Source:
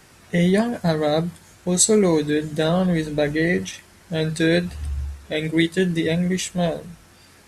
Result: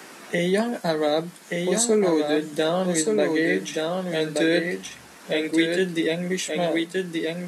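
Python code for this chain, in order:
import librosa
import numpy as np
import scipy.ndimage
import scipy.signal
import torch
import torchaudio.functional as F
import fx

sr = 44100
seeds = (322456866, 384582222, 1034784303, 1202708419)

y = scipy.signal.sosfilt(scipy.signal.butter(4, 220.0, 'highpass', fs=sr, output='sos'), x)
y = y + 10.0 ** (-5.0 / 20.0) * np.pad(y, (int(1176 * sr / 1000.0), 0))[:len(y)]
y = fx.band_squash(y, sr, depth_pct=40)
y = y * librosa.db_to_amplitude(-1.5)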